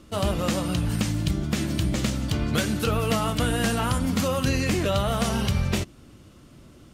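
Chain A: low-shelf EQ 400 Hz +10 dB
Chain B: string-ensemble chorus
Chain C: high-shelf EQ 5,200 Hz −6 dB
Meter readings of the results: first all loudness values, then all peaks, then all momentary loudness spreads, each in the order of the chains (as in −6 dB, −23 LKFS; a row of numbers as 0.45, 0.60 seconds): −18.0, −28.0, −25.5 LKFS; −4.0, −13.0, −11.5 dBFS; 2, 3, 3 LU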